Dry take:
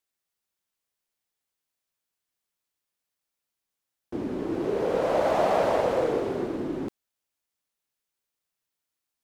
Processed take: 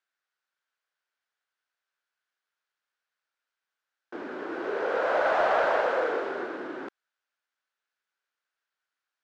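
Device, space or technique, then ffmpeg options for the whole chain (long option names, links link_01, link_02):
intercom: -af "highpass=480,lowpass=4500,equalizer=frequency=1500:width_type=o:width=0.52:gain=12,asoftclip=type=tanh:threshold=-13dB"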